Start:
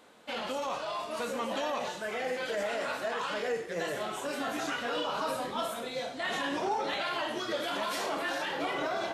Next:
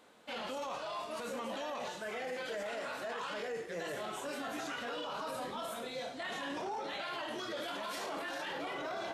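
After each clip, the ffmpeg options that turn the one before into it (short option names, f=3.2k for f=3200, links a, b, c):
-af "alimiter=level_in=4dB:limit=-24dB:level=0:latency=1:release=13,volume=-4dB,volume=-4dB"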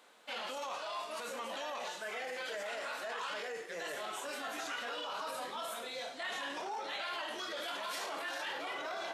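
-af "highpass=f=810:p=1,volume=2.5dB"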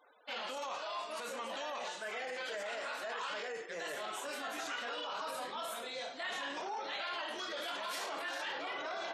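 -af "afftfilt=real='re*gte(hypot(re,im),0.00141)':imag='im*gte(hypot(re,im),0.00141)':win_size=1024:overlap=0.75"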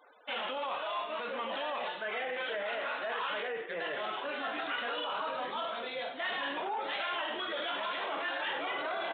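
-af "aresample=8000,aresample=44100,volume=5dB"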